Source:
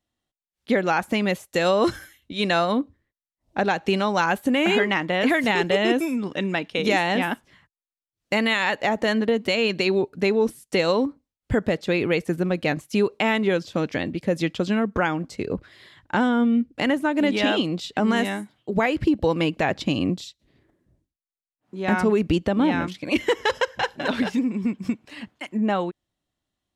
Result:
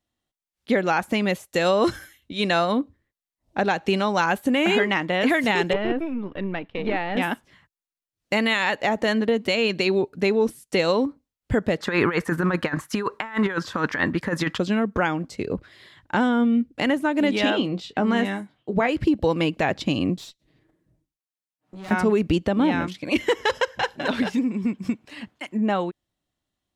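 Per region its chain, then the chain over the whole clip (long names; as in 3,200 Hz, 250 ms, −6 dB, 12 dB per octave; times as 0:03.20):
0:05.73–0:07.17: gain on one half-wave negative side −7 dB + high-frequency loss of the air 430 metres
0:11.80–0:14.58: flat-topped bell 1,300 Hz +14 dB 1.3 octaves + compressor whose output falls as the input rises −22 dBFS, ratio −0.5
0:17.50–0:18.89: low-pass filter 2,900 Hz 6 dB per octave + double-tracking delay 21 ms −11.5 dB
0:20.16–0:21.91: comb filter 6.4 ms, depth 49% + tube saturation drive 35 dB, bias 0.5
whole clip: no processing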